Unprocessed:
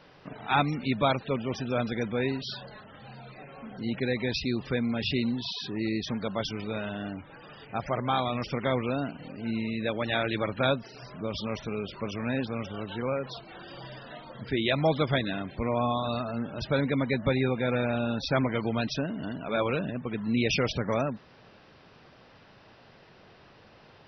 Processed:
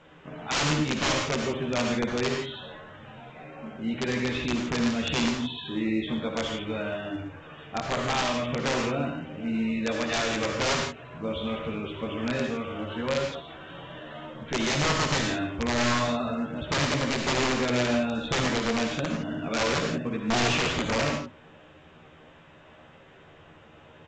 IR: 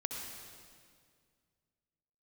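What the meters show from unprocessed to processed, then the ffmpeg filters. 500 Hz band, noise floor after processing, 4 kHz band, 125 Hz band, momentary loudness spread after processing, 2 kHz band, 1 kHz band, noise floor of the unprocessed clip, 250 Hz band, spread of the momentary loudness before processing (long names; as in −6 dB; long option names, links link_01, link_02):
+0.5 dB, −53 dBFS, +5.0 dB, −0.5 dB, 16 LU, +4.5 dB, +1.5 dB, −55 dBFS, +1.5 dB, 16 LU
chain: -filter_complex "[0:a]asplit=2[link_01][link_02];[link_02]adelay=13,volume=-3dB[link_03];[link_01][link_03]amix=inputs=2:normalize=0,aresample=8000,aresample=44100,aeval=exprs='(mod(8.91*val(0)+1,2)-1)/8.91':channel_layout=same[link_04];[1:a]atrim=start_sample=2205,afade=type=out:start_time=0.26:duration=0.01,atrim=end_sample=11907,asetrate=52920,aresample=44100[link_05];[link_04][link_05]afir=irnorm=-1:irlink=0,volume=2dB" -ar 16000 -c:a pcm_alaw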